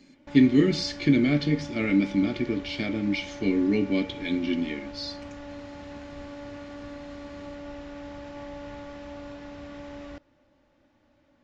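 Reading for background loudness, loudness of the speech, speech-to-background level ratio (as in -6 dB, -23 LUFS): -41.0 LUFS, -25.0 LUFS, 16.0 dB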